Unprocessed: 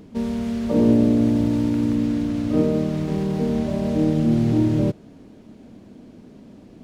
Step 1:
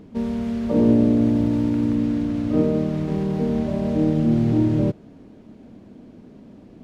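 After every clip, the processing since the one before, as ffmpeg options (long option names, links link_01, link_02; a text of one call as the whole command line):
ffmpeg -i in.wav -af "highshelf=frequency=3800:gain=-8" out.wav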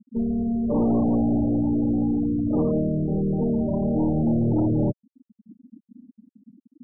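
ffmpeg -i in.wav -af "aeval=exprs='(tanh(11.2*val(0)+0.2)-tanh(0.2))/11.2':channel_layout=same,afftfilt=real='re*gte(hypot(re,im),0.0631)':imag='im*gte(hypot(re,im),0.0631)':win_size=1024:overlap=0.75,volume=3dB" out.wav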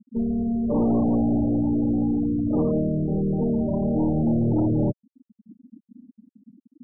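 ffmpeg -i in.wav -af anull out.wav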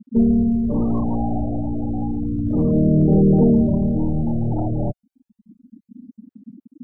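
ffmpeg -i in.wav -af "aphaser=in_gain=1:out_gain=1:delay=1.4:decay=0.68:speed=0.31:type=sinusoidal" out.wav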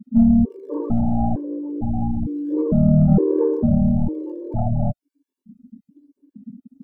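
ffmpeg -i in.wav -filter_complex "[0:a]asplit=2[link_01][link_02];[link_02]acontrast=59,volume=1dB[link_03];[link_01][link_03]amix=inputs=2:normalize=0,afftfilt=real='re*gt(sin(2*PI*1.1*pts/sr)*(1-2*mod(floor(b*sr/1024/300),2)),0)':imag='im*gt(sin(2*PI*1.1*pts/sr)*(1-2*mod(floor(b*sr/1024/300),2)),0)':win_size=1024:overlap=0.75,volume=-7.5dB" out.wav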